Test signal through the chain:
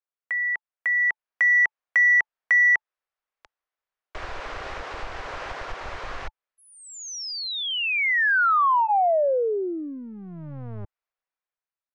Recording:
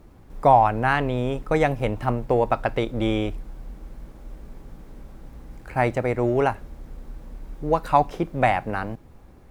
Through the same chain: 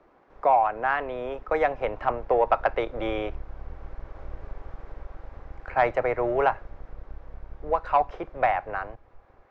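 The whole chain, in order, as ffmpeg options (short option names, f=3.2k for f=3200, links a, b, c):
-filter_complex "[0:a]asubboost=boost=12:cutoff=62,acrossover=split=150[a][b];[a]aeval=exprs='max(val(0),0)':c=same[c];[c][b]amix=inputs=2:normalize=0,lowpass=f=6k:w=0.5412,lowpass=f=6k:w=1.3066,asplit=2[d][e];[e]acompressor=threshold=-28dB:ratio=6,volume=-0.5dB[f];[d][f]amix=inputs=2:normalize=0,acrossover=split=410 2200:gain=0.112 1 0.178[g][h][i];[g][h][i]amix=inputs=3:normalize=0,dynaudnorm=f=320:g=7:m=9.5dB,asoftclip=type=tanh:threshold=-2dB,bandreject=f=870:w=21,volume=-4dB"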